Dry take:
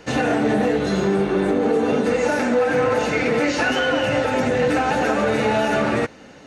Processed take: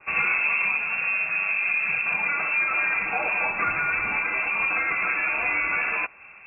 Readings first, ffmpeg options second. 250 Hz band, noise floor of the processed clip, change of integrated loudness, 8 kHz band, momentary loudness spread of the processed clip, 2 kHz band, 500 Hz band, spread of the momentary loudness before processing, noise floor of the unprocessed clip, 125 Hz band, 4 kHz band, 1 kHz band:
-24.5 dB, -47 dBFS, -3.0 dB, under -40 dB, 3 LU, +3.5 dB, -21.5 dB, 1 LU, -43 dBFS, -20.5 dB, under -20 dB, -6.5 dB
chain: -af "highpass=f=180:w=0.5412,highpass=f=180:w=1.3066,lowpass=f=2.5k:t=q:w=0.5098,lowpass=f=2.5k:t=q:w=0.6013,lowpass=f=2.5k:t=q:w=0.9,lowpass=f=2.5k:t=q:w=2.563,afreqshift=-2900,adynamicequalizer=threshold=0.0316:dfrequency=2000:dqfactor=0.7:tfrequency=2000:tqfactor=0.7:attack=5:release=100:ratio=0.375:range=3:mode=cutabove:tftype=highshelf,volume=-2dB"

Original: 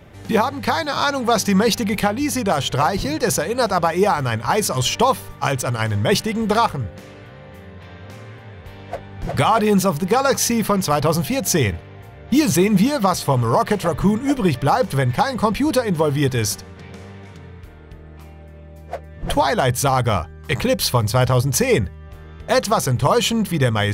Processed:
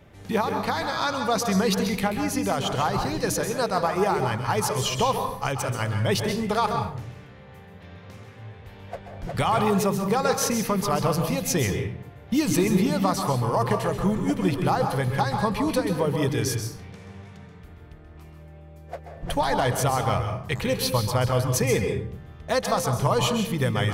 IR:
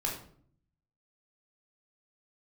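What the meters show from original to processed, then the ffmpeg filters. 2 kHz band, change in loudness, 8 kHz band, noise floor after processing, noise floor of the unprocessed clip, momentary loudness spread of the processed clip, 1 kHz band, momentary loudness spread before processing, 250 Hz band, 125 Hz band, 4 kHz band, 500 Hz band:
-6.0 dB, -5.5 dB, -6.0 dB, -46 dBFS, -40 dBFS, 16 LU, -5.5 dB, 14 LU, -5.5 dB, -5.0 dB, -6.0 dB, -5.5 dB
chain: -filter_complex "[0:a]asplit=2[a][b];[1:a]atrim=start_sample=2205,adelay=131[c];[b][c]afir=irnorm=-1:irlink=0,volume=-9.5dB[d];[a][d]amix=inputs=2:normalize=0,volume=-7dB"

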